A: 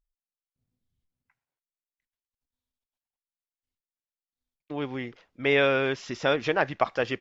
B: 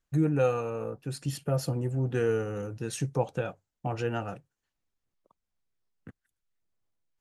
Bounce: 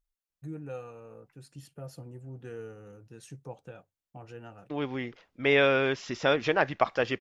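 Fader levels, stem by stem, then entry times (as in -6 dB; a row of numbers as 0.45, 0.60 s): -0.5, -14.5 dB; 0.00, 0.30 s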